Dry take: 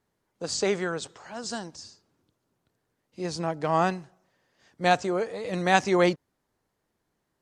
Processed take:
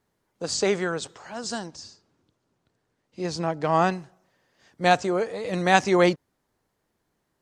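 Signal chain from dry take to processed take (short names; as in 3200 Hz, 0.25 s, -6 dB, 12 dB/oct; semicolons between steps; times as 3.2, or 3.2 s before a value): 1.66–3.92 LPF 8200 Hz 12 dB/oct; gain +2.5 dB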